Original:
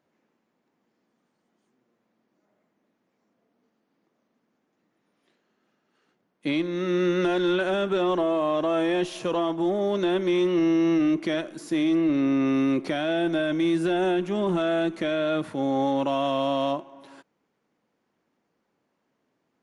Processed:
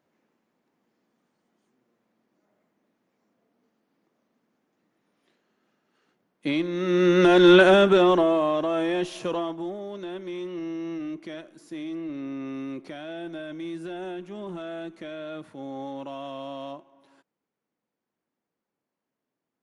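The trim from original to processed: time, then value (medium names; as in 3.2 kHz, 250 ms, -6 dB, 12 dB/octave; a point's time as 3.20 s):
6.79 s 0 dB
7.58 s +11 dB
8.68 s -1.5 dB
9.30 s -1.5 dB
9.85 s -11.5 dB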